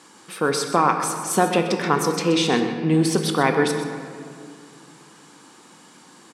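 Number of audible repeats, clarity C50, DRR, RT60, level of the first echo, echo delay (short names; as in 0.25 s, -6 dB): 1, 6.0 dB, 5.0 dB, 2.3 s, -12.5 dB, 0.127 s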